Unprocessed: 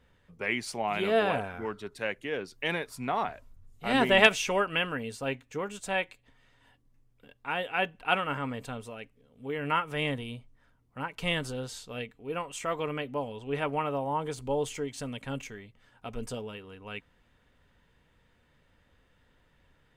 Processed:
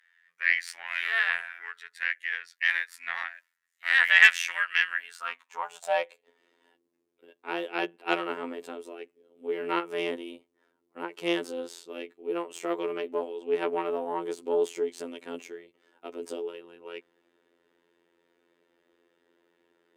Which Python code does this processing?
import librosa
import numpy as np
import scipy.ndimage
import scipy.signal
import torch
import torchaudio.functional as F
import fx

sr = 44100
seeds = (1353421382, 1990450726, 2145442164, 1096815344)

y = fx.robotise(x, sr, hz=85.7)
y = fx.cheby_harmonics(y, sr, harmonics=(5, 6), levels_db=(-23, -15), full_scale_db=-0.5)
y = fx.filter_sweep_highpass(y, sr, from_hz=1800.0, to_hz=360.0, start_s=4.96, end_s=6.43, q=6.3)
y = y * 10.0 ** (-5.0 / 20.0)